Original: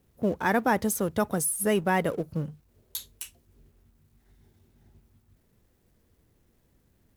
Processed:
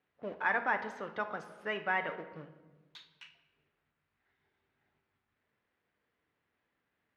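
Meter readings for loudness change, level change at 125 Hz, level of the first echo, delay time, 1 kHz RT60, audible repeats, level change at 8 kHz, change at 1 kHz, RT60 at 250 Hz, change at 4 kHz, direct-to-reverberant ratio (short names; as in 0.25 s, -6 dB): -7.5 dB, -20.5 dB, none, none, 1.1 s, none, under -35 dB, -6.5 dB, 1.7 s, -8.0 dB, 6.5 dB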